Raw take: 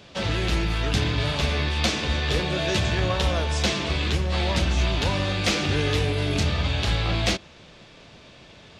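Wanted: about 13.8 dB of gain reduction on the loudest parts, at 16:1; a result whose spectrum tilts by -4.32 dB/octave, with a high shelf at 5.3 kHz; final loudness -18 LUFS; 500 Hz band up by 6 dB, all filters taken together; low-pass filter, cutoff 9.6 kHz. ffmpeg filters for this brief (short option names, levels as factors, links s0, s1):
-af "lowpass=9600,equalizer=f=500:t=o:g=7.5,highshelf=f=5300:g=-5,acompressor=threshold=0.0282:ratio=16,volume=7.5"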